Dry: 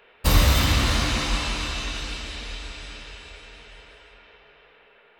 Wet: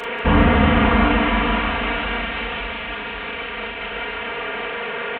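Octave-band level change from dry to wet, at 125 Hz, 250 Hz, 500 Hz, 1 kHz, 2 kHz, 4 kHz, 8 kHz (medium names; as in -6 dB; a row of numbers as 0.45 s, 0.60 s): +1.5 dB, +12.0 dB, +12.0 dB, +11.0 dB, +9.0 dB, -0.5 dB, under -30 dB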